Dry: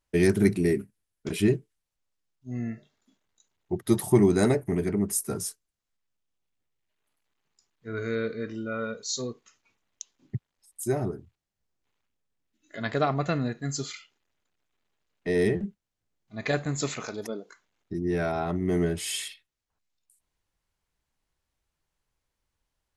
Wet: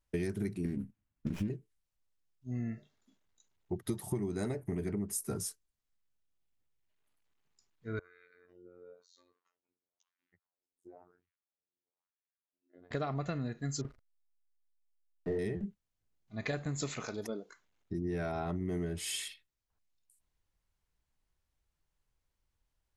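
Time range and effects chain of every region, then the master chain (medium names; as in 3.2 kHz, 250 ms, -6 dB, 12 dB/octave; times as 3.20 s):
0.65–1.50 s: compression 2:1, threshold -32 dBFS + resonant low shelf 330 Hz +7.5 dB, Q 3 + sliding maximum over 9 samples
7.99–12.91 s: compression, threshold -38 dBFS + wah-wah 1 Hz 320–2000 Hz, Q 2.6 + robot voice 88.9 Hz
13.81–15.39 s: inverse Chebyshev low-pass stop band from 3.1 kHz + doubling 36 ms -3 dB + hysteresis with a dead band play -40.5 dBFS
whole clip: bass shelf 120 Hz +7.5 dB; compression 12:1, threshold -26 dBFS; trim -5 dB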